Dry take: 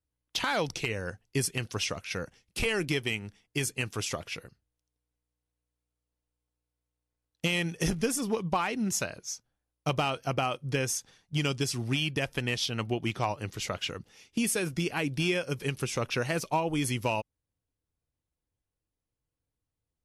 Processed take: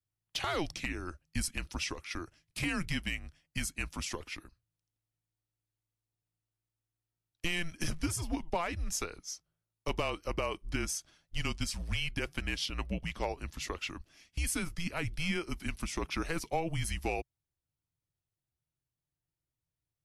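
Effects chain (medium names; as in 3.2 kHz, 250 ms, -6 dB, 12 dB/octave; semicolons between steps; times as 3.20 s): frequency shift -170 Hz; trim -4.5 dB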